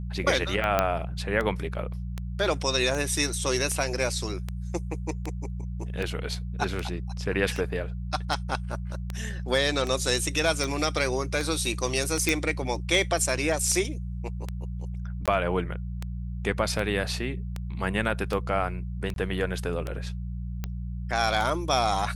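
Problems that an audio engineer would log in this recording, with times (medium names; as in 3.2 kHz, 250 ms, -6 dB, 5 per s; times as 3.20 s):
hum 60 Hz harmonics 3 -33 dBFS
tick 78 rpm -17 dBFS
0.79 s: pop -8 dBFS
12.29 s: pop
15.26–15.28 s: dropout 17 ms
19.14–19.16 s: dropout 22 ms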